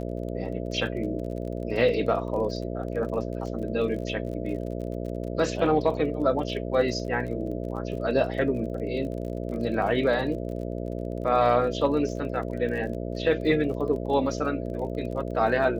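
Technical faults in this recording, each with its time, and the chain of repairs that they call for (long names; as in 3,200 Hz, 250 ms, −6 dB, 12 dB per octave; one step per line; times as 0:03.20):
mains buzz 60 Hz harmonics 11 −32 dBFS
surface crackle 33 per second −36 dBFS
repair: click removal
hum removal 60 Hz, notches 11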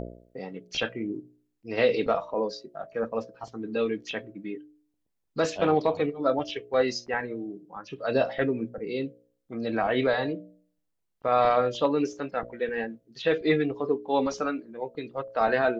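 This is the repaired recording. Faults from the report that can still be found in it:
none of them is left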